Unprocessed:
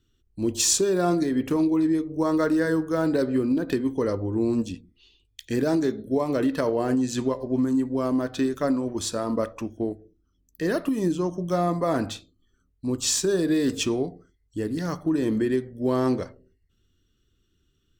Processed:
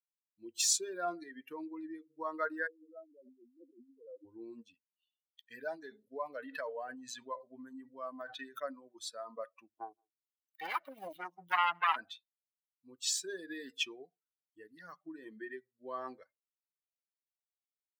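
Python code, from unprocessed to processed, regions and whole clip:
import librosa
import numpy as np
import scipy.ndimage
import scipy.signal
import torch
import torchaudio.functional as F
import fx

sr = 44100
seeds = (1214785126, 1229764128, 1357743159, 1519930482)

y = fx.chain(x, sr, fx.spec_expand(power=2.1),
    fx.brickwall_bandpass(low_hz=180.0, high_hz=1400.0),
    fx.over_compress(threshold_db=-30.0, ratio=-1.0), at=(2.67, 4.25))
y = fx.chain(y, sr, fx.notch(hz=350.0, q=5.4),
    fx.sustainer(db_per_s=69.0), at=(5.51, 8.6))
y = fx.chain(y, sr, fx.self_delay(depth_ms=0.88),
    fx.echo_single(ms=165, db=-21.5),
    fx.band_squash(depth_pct=40), at=(9.75, 11.96))
y = fx.bin_expand(y, sr, power=2.0)
y = scipy.signal.sosfilt(scipy.signal.butter(2, 1300.0, 'highpass', fs=sr, output='sos'), y)
y = fx.high_shelf(y, sr, hz=2700.0, db=-11.5)
y = y * 10.0 ** (4.5 / 20.0)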